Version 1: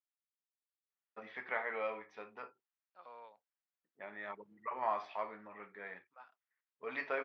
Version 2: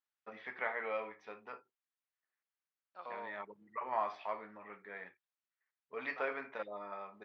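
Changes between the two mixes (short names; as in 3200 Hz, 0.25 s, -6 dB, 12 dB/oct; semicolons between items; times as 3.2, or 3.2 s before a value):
first voice: entry -0.90 s; second voice +8.0 dB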